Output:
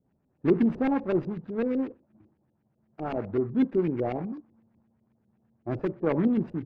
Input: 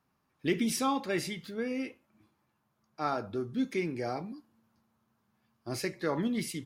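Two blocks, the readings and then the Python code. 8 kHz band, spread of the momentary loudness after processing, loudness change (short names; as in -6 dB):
under -30 dB, 12 LU, +5.5 dB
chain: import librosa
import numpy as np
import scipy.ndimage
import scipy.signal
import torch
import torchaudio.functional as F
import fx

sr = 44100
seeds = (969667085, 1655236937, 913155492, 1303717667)

y = scipy.signal.medfilt(x, 41)
y = fx.filter_lfo_lowpass(y, sr, shape='saw_up', hz=8.0, low_hz=390.0, high_hz=2800.0, q=1.2)
y = y * librosa.db_to_amplitude(7.0)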